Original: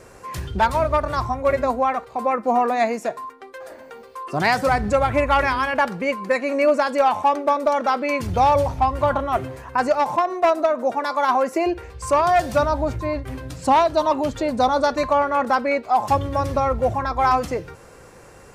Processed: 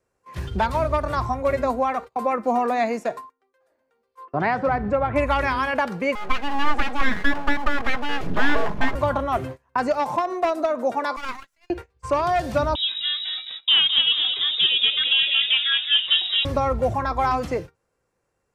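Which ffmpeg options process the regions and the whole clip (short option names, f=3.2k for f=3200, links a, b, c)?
-filter_complex "[0:a]asettb=1/sr,asplit=3[a][b][c];[a]atrim=end=4.254[d];[b]atrim=start=4.25:end=5.16,asetpts=PTS-STARTPTS,afade=t=in:d=0.004:c=qsin,afade=t=out:st=0.906:d=0.004:c=qsin,lowpass=1.8k,lowshelf=f=87:g=-8.5[e];[c]atrim=start=5.156[f];[d][e]acrossfade=d=0.004:c1=hsin:c2=qsin[g];[g][f]acrossfade=d=0.004:c1=qsin:c2=hsin,asettb=1/sr,asplit=3[h][i][j];[h]atrim=end=6.154[k];[i]atrim=start=6.15:end=8.95,asetpts=PTS-STARTPTS,afade=t=in:d=0.004:c=qsin,afade=t=out:st=2.796:d=0.004:c=qsin,bass=f=250:g=2,treble=f=4k:g=-15,aeval=exprs='abs(val(0))':c=same,aecho=1:1:4.8:0.32,atrim=end_sample=123480[l];[j]atrim=start=8.946[m];[k][l]acrossfade=d=0.004:c1=hsin:c2=qsin[n];[n][m]acrossfade=d=0.004:c1=qsin:c2=hsin,asettb=1/sr,asplit=3[o][p][q];[o]atrim=end=11.164[r];[p]atrim=start=11.16:end=11.7,asetpts=PTS-STARTPTS,afade=t=in:d=0.004:c=qsin,afade=t=out:st=0.536:d=0.004:c=qsin,highpass=f=1.3k:w=0.5412,highpass=f=1.3k:w=1.3066,aeval=exprs='max(val(0),0)':c=same,highshelf=f=3.3k:g=2[s];[q]atrim=start=11.696[t];[r][s]acrossfade=d=0.004:c1=hsin:c2=qsin[u];[u][t]acrossfade=d=0.004:c1=qsin:c2=hsin,asettb=1/sr,asplit=3[v][w][x];[v]atrim=end=12.754[y];[w]atrim=start=12.75:end=16.45,asetpts=PTS-STARTPTS,afade=t=in:d=0.004:c=qsin,afade=t=out:st=3.696:d=0.004:c=qsin,asplit=8[z][aa][ab][ac][ad][ae][af][ag];[aa]adelay=214,afreqshift=-66,volume=-7dB[ah];[ab]adelay=428,afreqshift=-132,volume=-12.2dB[ai];[ac]adelay=642,afreqshift=-198,volume=-17.4dB[aj];[ad]adelay=856,afreqshift=-264,volume=-22.6dB[ak];[ae]adelay=1070,afreqshift=-330,volume=-27.8dB[al];[af]adelay=1284,afreqshift=-396,volume=-33dB[am];[ag]adelay=1498,afreqshift=-462,volume=-38.2dB[an];[z][ah][ai][aj][ak][al][am][an]amix=inputs=8:normalize=0,atrim=end_sample=163170,lowpass=f=3.3k:t=q:w=0.5098,lowpass=f=3.3k:t=q:w=0.6013,lowpass=f=3.3k:t=q:w=0.9,lowpass=f=3.3k:t=q:w=2.563,afreqshift=-3900[ao];[x]atrim=start=16.446[ap];[y][ao]acrossfade=d=0.004:c1=hsin:c2=qsin[aq];[aq][ap]acrossfade=d=0.004:c1=qsin:c2=hsin,acrossover=split=4300[ar][as];[as]acompressor=threshold=-46dB:ratio=4:attack=1:release=60[at];[ar][at]amix=inputs=2:normalize=0,agate=range=-29dB:threshold=-31dB:ratio=16:detection=peak,acrossover=split=350|3000[au][av][aw];[av]acompressor=threshold=-19dB:ratio=6[ax];[au][ax][aw]amix=inputs=3:normalize=0"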